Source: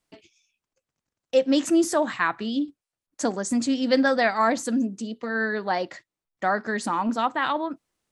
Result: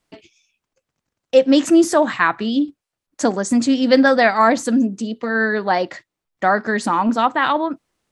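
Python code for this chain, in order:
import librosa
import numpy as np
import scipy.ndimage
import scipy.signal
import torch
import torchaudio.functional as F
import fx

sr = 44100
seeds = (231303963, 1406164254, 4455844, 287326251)

y = fx.high_shelf(x, sr, hz=5800.0, db=-5.5)
y = y * librosa.db_to_amplitude(7.5)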